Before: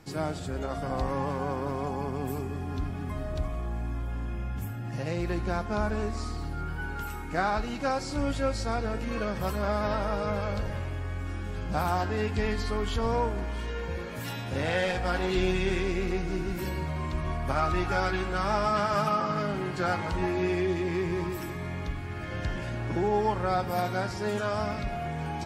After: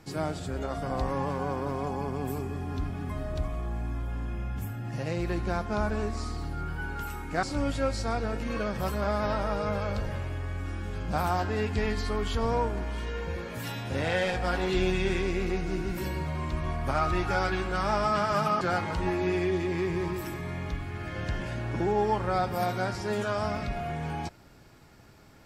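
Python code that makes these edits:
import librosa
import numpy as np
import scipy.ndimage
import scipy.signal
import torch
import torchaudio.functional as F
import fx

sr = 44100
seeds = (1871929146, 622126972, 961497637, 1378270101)

y = fx.edit(x, sr, fx.cut(start_s=7.43, length_s=0.61),
    fx.cut(start_s=19.22, length_s=0.55), tone=tone)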